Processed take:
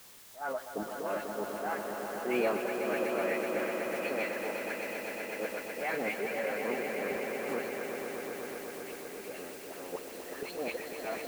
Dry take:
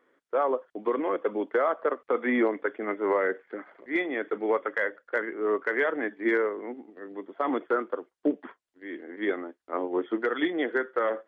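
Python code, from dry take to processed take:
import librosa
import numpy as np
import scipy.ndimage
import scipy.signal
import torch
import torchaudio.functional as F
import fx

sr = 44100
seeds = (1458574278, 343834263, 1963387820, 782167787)

p1 = fx.low_shelf_res(x, sr, hz=210.0, db=12.0, q=1.5)
p2 = fx.auto_swell(p1, sr, attack_ms=683.0)
p3 = fx.level_steps(p2, sr, step_db=22)
p4 = p2 + (p3 * librosa.db_to_amplitude(2.5))
p5 = fx.dispersion(p4, sr, late='highs', ms=115.0, hz=1900.0)
p6 = fx.dmg_noise_colour(p5, sr, seeds[0], colour='white', level_db=-54.0)
p7 = fx.formant_shift(p6, sr, semitones=4)
y = p7 + fx.echo_swell(p7, sr, ms=124, loudest=5, wet_db=-8.0, dry=0)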